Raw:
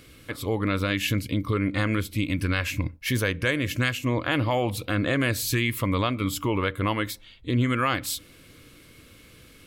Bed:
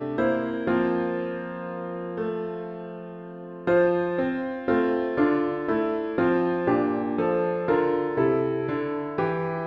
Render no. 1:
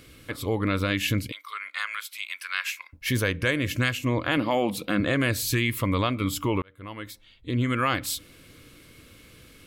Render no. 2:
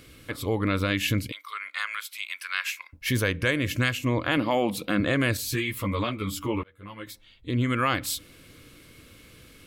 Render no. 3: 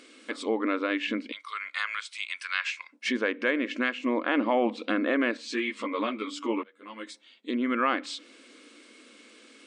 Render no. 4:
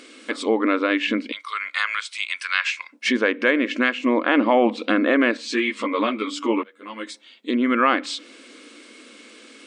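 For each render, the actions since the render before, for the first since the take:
1.32–2.93 s: high-pass 1.1 kHz 24 dB/octave; 4.37–5.00 s: resonant low shelf 140 Hz -8 dB, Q 3; 6.62–7.88 s: fade in
5.37–7.07 s: three-phase chorus
low-pass that closes with the level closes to 2.2 kHz, closed at -22 dBFS; FFT band-pass 210–9400 Hz
trim +7.5 dB

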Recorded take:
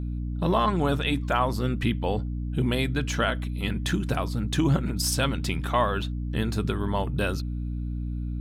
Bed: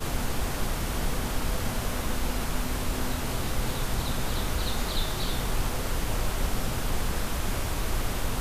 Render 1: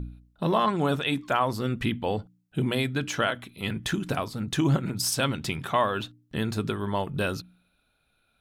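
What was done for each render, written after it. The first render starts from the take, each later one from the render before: de-hum 60 Hz, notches 5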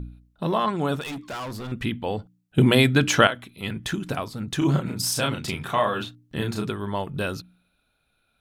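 1.01–1.72 s: overload inside the chain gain 30.5 dB; 2.58–3.27 s: gain +9.5 dB; 4.58–6.69 s: doubling 34 ms -3 dB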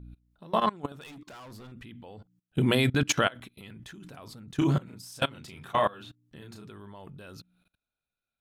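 level held to a coarse grid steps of 23 dB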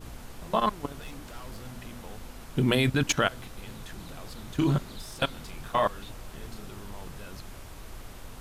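add bed -15 dB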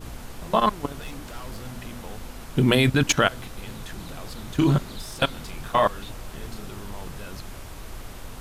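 trim +5 dB

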